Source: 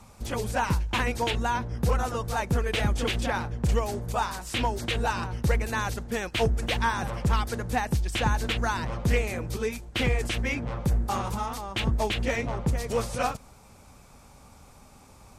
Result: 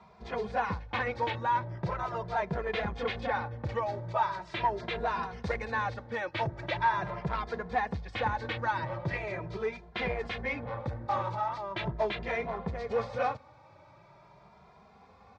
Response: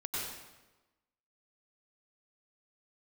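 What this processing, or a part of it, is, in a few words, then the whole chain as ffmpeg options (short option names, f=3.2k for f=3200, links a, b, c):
barber-pole flanger into a guitar amplifier: -filter_complex "[0:a]asettb=1/sr,asplit=3[a][b][c];[a]atrim=end=5.234[d];[b]atrim=start=5.23:end=5.65,asetpts=PTS-STARTPTS,afade=t=in:d=0.004:c=qsin,afade=t=out:st=0.416:d=0.004:c=qsin,aemphasis=mode=production:type=75fm[e];[c]atrim=start=5.646[f];[d][e]acrossfade=d=0.004:c1=hsin:c2=qsin[g];[g][f]acrossfade=d=0.004:c1=qsin:c2=hsin,asplit=2[h][i];[i]adelay=2.5,afreqshift=0.41[j];[h][j]amix=inputs=2:normalize=1,asoftclip=type=tanh:threshold=-22dB,highpass=110,equalizer=f=250:t=q:w=4:g=-9,equalizer=f=620:t=q:w=4:g=5,equalizer=f=970:t=q:w=4:g=5,equalizer=f=1.9k:t=q:w=4:g=3,equalizer=f=2.9k:t=q:w=4:g=-8,lowpass=f=3.9k:w=0.5412,lowpass=f=3.9k:w=1.3066"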